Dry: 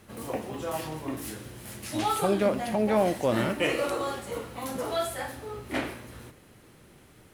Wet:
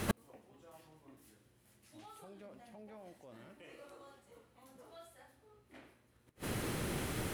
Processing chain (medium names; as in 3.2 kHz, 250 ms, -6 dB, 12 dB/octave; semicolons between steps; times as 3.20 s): peak limiter -19.5 dBFS, peak gain reduction 6 dB; inverted gate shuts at -35 dBFS, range -42 dB; trim +16 dB